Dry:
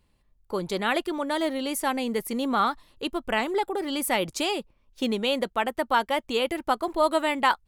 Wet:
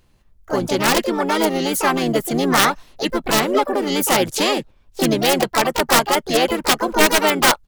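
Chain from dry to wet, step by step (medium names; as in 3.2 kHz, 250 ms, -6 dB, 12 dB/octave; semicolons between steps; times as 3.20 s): integer overflow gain 14.5 dB; harmony voices -7 st -6 dB, +4 st -12 dB, +7 st -4 dB; trim +6.5 dB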